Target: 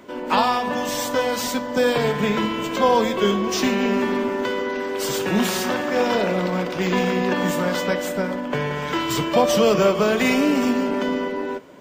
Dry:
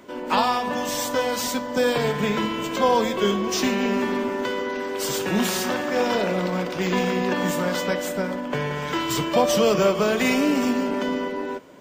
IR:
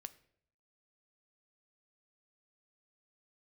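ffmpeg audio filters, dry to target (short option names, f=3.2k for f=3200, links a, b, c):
-filter_complex "[0:a]asplit=2[a][b];[1:a]atrim=start_sample=2205,lowpass=5.3k[c];[b][c]afir=irnorm=-1:irlink=0,volume=-5.5dB[d];[a][d]amix=inputs=2:normalize=0"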